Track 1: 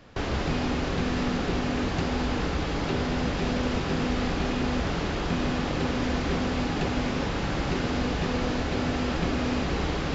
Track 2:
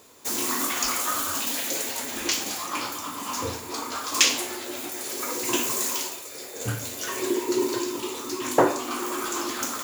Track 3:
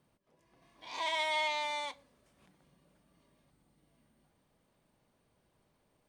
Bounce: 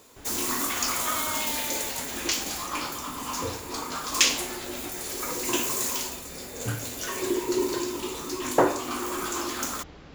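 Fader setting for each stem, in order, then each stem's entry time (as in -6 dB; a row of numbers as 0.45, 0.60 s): -19.0, -1.5, -3.0 dB; 0.00, 0.00, 0.00 s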